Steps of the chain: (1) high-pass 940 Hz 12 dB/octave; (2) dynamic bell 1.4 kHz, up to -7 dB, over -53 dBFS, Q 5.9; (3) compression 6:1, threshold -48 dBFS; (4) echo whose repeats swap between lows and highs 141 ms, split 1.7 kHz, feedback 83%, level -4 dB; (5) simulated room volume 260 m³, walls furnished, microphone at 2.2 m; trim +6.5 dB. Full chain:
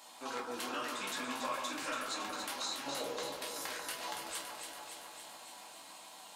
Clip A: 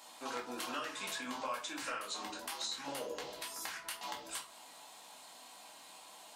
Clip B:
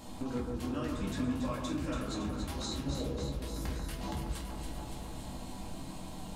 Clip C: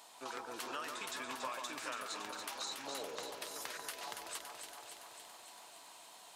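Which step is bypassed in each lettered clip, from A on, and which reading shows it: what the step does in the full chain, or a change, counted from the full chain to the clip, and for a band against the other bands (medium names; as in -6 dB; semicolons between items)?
4, momentary loudness spread change +1 LU; 1, 125 Hz band +29.0 dB; 5, echo-to-direct 4.5 dB to -2.0 dB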